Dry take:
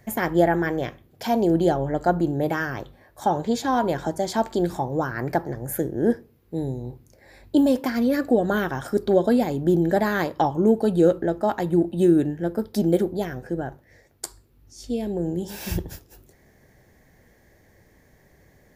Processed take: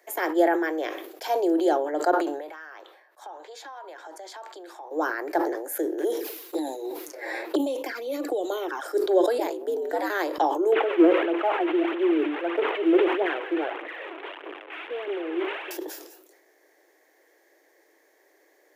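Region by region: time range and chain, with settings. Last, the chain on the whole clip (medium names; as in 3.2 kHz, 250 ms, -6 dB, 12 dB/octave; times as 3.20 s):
2.11–4.91 s: high-pass 1.1 kHz + tilt EQ -3.5 dB/octave + compression 5:1, threshold -36 dBFS
5.98–8.86 s: peaking EQ 340 Hz -2 dB 2.8 oct + touch-sensitive flanger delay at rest 10.4 ms, full sweep at -20.5 dBFS + three bands compressed up and down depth 100%
9.38–10.10 s: hum notches 60/120/180/240/300 Hz + ring modulator 100 Hz
10.72–15.71 s: one-bit delta coder 16 kbps, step -29 dBFS + phaser 1.6 Hz, delay 3.2 ms, feedback 48%
whole clip: steep high-pass 300 Hz 96 dB/octave; decay stretcher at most 55 dB/s; trim -2 dB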